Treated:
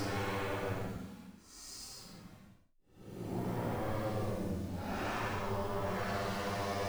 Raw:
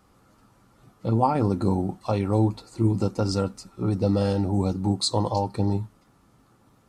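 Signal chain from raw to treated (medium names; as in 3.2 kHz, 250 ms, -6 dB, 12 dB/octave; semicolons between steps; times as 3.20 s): send-on-delta sampling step -42.5 dBFS; wavefolder -25 dBFS; Paulstretch 7.5×, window 0.10 s, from 3.36 s; trim -6.5 dB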